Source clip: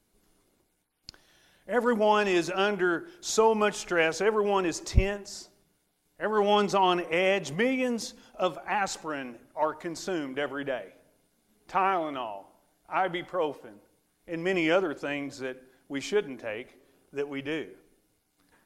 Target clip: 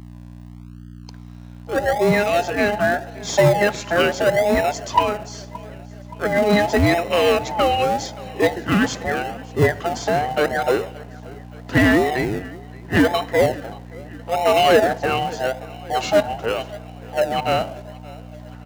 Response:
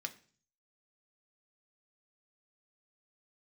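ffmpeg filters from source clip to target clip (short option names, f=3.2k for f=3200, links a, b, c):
-filter_complex "[0:a]afftfilt=real='real(if(between(b,1,1008),(2*floor((b-1)/48)+1)*48-b,b),0)':imag='imag(if(between(b,1,1008),(2*floor((b-1)/48)+1)*48-b,b),0)*if(between(b,1,1008),-1,1)':win_size=2048:overlap=0.75,equalizer=f=180:w=7.2:g=-2.5,aecho=1:1:574|1148|1722|2296:0.0708|0.0425|0.0255|0.0153,dynaudnorm=f=710:g=7:m=13dB,aresample=16000,aresample=44100,aeval=exprs='val(0)+0.0126*(sin(2*PI*60*n/s)+sin(2*PI*2*60*n/s)/2+sin(2*PI*3*60*n/s)/3+sin(2*PI*4*60*n/s)/4+sin(2*PI*5*60*n/s)/5)':c=same,highshelf=f=3.7k:g=-6.5,asplit=2[a][b];[b]acrusher=samples=40:mix=1:aa=0.000001:lfo=1:lforange=24:lforate=0.81,volume=-8.5dB[c];[a][c]amix=inputs=2:normalize=0,acontrast=78,highpass=85,volume=-4.5dB"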